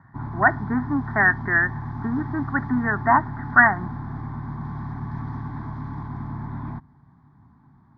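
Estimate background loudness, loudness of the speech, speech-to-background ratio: -32.5 LUFS, -21.0 LUFS, 11.5 dB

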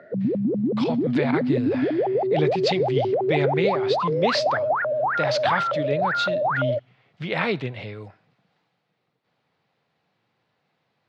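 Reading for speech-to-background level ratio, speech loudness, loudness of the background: -5.0 dB, -28.5 LUFS, -23.5 LUFS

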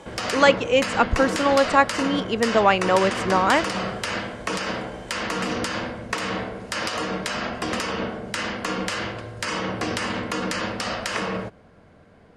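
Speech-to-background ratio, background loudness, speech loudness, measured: 7.0 dB, -27.5 LUFS, -20.5 LUFS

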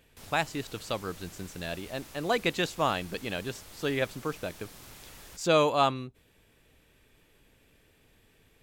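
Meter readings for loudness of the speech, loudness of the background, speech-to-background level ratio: -30.5 LUFS, -48.5 LUFS, 18.0 dB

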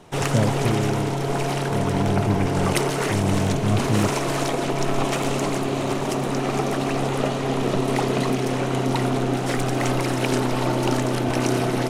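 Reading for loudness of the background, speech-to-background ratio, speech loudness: -23.5 LUFS, -2.5 dB, -26.0 LUFS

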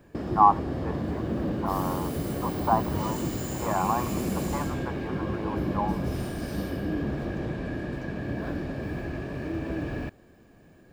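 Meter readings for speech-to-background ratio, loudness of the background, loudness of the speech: 2.5 dB, -31.5 LUFS, -29.0 LUFS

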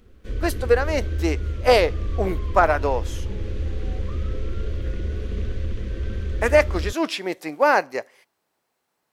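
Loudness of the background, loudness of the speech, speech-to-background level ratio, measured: -29.5 LUFS, -22.0 LUFS, 7.5 dB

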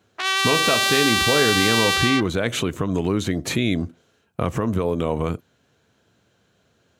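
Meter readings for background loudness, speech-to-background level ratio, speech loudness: -18.5 LUFS, -5.0 dB, -23.5 LUFS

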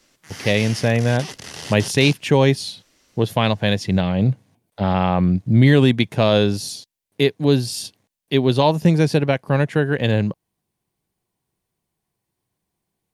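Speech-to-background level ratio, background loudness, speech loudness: 15.0 dB, -33.5 LUFS, -18.5 LUFS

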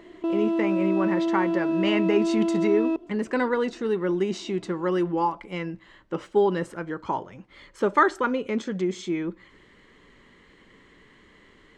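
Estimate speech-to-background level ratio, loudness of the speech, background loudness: -1.5 dB, -27.0 LUFS, -25.5 LUFS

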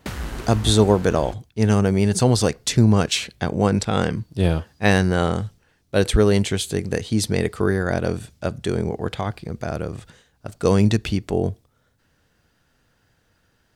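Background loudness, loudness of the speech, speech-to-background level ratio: -35.0 LUFS, -21.0 LUFS, 14.0 dB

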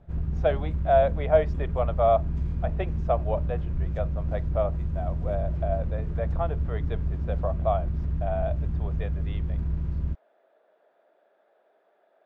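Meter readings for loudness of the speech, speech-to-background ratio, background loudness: -29.0 LUFS, 1.5 dB, -30.5 LUFS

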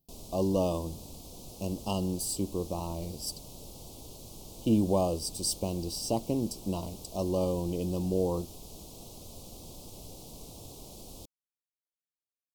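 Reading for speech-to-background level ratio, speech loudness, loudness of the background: 15.0 dB, -32.0 LUFS, -47.0 LUFS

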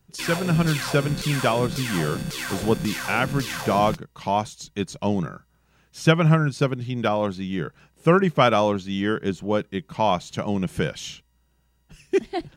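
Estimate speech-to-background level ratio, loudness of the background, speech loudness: 6.0 dB, -30.0 LUFS, -24.0 LUFS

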